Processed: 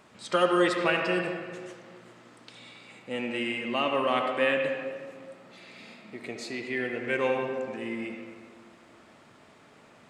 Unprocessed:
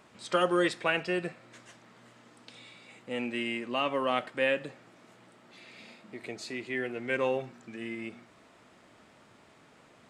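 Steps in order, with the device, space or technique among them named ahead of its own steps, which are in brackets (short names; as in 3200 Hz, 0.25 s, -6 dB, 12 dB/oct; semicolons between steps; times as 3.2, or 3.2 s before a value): filtered reverb send (on a send: HPF 180 Hz 12 dB/oct + LPF 5000 Hz + reverb RT60 1.8 s, pre-delay 64 ms, DRR 3 dB); on the sum: gain +1.5 dB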